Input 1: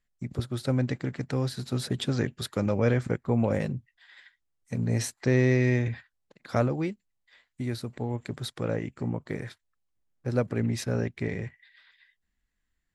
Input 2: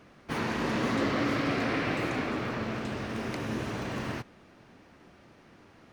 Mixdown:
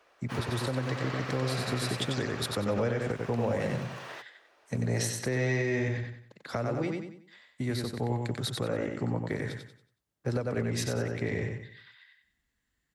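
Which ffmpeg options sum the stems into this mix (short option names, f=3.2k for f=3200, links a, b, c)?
-filter_complex "[0:a]highpass=56,bandreject=f=2.4k:w=20,volume=2.5dB,asplit=2[a][b];[b]volume=-4.5dB[c];[1:a]highpass=f=460:w=0.5412,highpass=f=460:w=1.3066,bandreject=f=2.1k:w=21,volume=-4.5dB[d];[c]aecho=0:1:93|186|279|372|465:1|0.34|0.116|0.0393|0.0134[e];[a][d][e]amix=inputs=3:normalize=0,acrossover=split=130|330[f][g][h];[f]acompressor=threshold=-33dB:ratio=4[i];[g]acompressor=threshold=-37dB:ratio=4[j];[h]acompressor=threshold=-25dB:ratio=4[k];[i][j][k]amix=inputs=3:normalize=0,alimiter=limit=-19.5dB:level=0:latency=1:release=267"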